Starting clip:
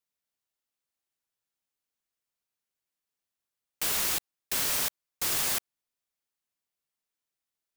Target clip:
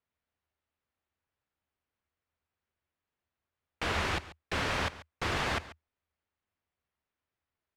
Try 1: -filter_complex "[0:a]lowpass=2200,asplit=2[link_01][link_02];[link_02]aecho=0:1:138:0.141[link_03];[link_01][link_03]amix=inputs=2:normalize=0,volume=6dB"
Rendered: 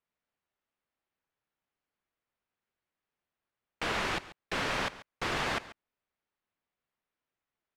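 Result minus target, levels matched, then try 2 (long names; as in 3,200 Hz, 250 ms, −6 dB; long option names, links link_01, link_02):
125 Hz band −5.5 dB
-filter_complex "[0:a]lowpass=2200,equalizer=frequency=79:width=2.4:gain=15,asplit=2[link_01][link_02];[link_02]aecho=0:1:138:0.141[link_03];[link_01][link_03]amix=inputs=2:normalize=0,volume=6dB"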